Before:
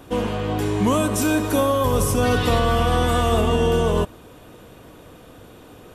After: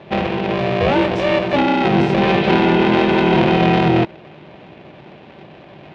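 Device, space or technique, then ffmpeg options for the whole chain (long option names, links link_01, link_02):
ring modulator pedal into a guitar cabinet: -af "aeval=exprs='val(0)*sgn(sin(2*PI*290*n/s))':channel_layout=same,highpass=88,equalizer=frequency=150:width_type=q:width=4:gain=9,equalizer=frequency=330:width_type=q:width=4:gain=8,equalizer=frequency=630:width_type=q:width=4:gain=4,equalizer=frequency=1300:width_type=q:width=4:gain=-6,equalizer=frequency=2500:width_type=q:width=4:gain=5,lowpass=frequency=3700:width=0.5412,lowpass=frequency=3700:width=1.3066,volume=2dB"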